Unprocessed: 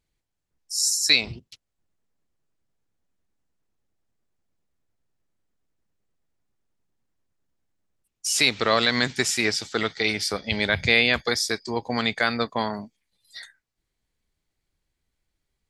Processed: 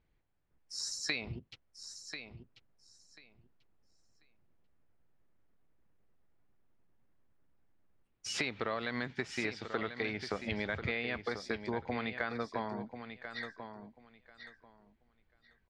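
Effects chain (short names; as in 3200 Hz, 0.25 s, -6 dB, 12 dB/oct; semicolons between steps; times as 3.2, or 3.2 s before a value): LPF 2200 Hz 12 dB/oct; compressor 6:1, threshold -37 dBFS, peak gain reduction 19.5 dB; on a send: feedback echo 1.04 s, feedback 18%, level -9.5 dB; on the sum: gain +3.5 dB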